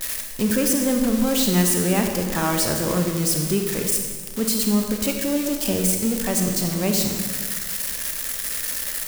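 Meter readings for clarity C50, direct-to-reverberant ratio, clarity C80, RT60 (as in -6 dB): 4.5 dB, 3.0 dB, 5.5 dB, 1.6 s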